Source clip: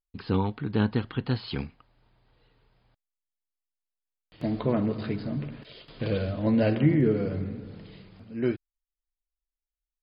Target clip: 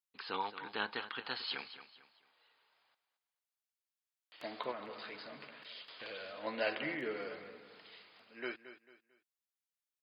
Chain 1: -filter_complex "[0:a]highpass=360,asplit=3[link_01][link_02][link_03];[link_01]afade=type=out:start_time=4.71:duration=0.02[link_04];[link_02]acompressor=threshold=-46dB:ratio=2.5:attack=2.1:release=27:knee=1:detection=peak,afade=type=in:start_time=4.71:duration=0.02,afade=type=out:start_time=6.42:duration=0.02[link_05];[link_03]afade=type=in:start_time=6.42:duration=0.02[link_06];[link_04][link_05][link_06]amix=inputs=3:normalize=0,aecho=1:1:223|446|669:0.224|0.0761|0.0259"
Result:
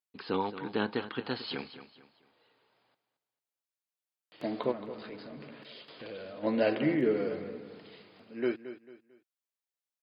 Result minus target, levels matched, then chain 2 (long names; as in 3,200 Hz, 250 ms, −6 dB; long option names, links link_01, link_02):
1,000 Hz band −5.0 dB
-filter_complex "[0:a]highpass=960,asplit=3[link_01][link_02][link_03];[link_01]afade=type=out:start_time=4.71:duration=0.02[link_04];[link_02]acompressor=threshold=-46dB:ratio=2.5:attack=2.1:release=27:knee=1:detection=peak,afade=type=in:start_time=4.71:duration=0.02,afade=type=out:start_time=6.42:duration=0.02[link_05];[link_03]afade=type=in:start_time=6.42:duration=0.02[link_06];[link_04][link_05][link_06]amix=inputs=3:normalize=0,aecho=1:1:223|446|669:0.224|0.0761|0.0259"